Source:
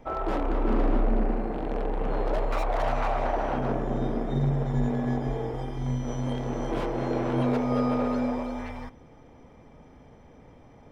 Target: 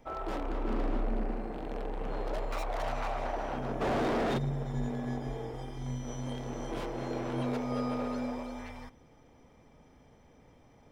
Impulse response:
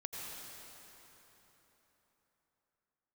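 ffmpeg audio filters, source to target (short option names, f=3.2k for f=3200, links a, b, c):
-filter_complex "[0:a]highshelf=f=3.2k:g=9.5,asplit=3[a][b][c];[a]afade=t=out:st=3.8:d=0.02[d];[b]asplit=2[e][f];[f]highpass=f=720:p=1,volume=39dB,asoftclip=type=tanh:threshold=-14.5dB[g];[e][g]amix=inputs=2:normalize=0,lowpass=f=1.5k:p=1,volume=-6dB,afade=t=in:st=3.8:d=0.02,afade=t=out:st=4.37:d=0.02[h];[c]afade=t=in:st=4.37:d=0.02[i];[d][h][i]amix=inputs=3:normalize=0,volume=-8dB"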